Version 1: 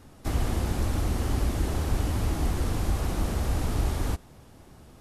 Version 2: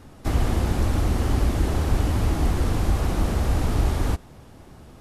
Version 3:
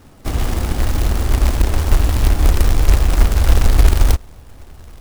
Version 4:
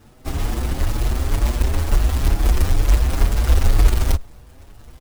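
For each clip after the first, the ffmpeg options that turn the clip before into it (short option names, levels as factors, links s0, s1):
-af "highshelf=f=5000:g=-5,volume=1.78"
-af "asubboost=boost=6:cutoff=69,acrusher=bits=3:mode=log:mix=0:aa=0.000001,volume=1.12"
-filter_complex "[0:a]asplit=2[s0][s1];[s1]adelay=6.6,afreqshift=2.1[s2];[s0][s2]amix=inputs=2:normalize=1,volume=0.891"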